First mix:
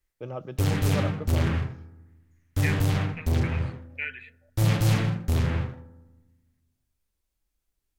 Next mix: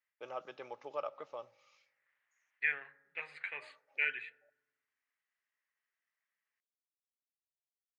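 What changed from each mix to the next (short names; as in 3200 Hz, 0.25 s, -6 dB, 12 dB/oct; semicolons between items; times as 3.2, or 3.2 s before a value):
first voice: add HPF 790 Hz 12 dB/oct; background: muted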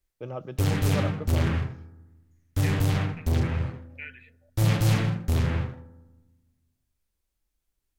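first voice: remove HPF 790 Hz 12 dB/oct; second voice -7.5 dB; background: unmuted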